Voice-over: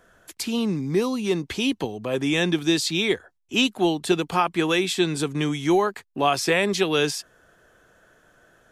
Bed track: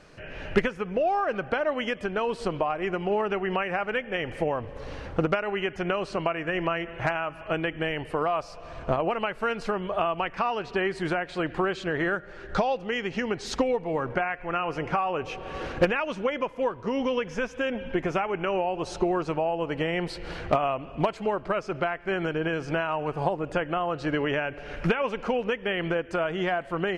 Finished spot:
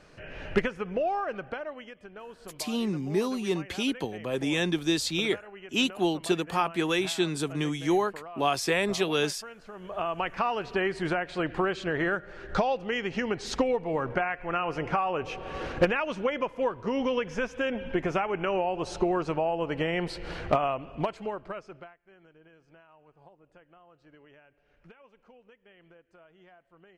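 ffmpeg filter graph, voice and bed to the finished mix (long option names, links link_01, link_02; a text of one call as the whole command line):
ffmpeg -i stem1.wav -i stem2.wav -filter_complex "[0:a]adelay=2200,volume=-5dB[link_01];[1:a]volume=13.5dB,afade=type=out:start_time=0.95:duration=0.93:silence=0.188365,afade=type=in:start_time=9.72:duration=0.56:silence=0.158489,afade=type=out:start_time=20.57:duration=1.39:silence=0.0375837[link_02];[link_01][link_02]amix=inputs=2:normalize=0" out.wav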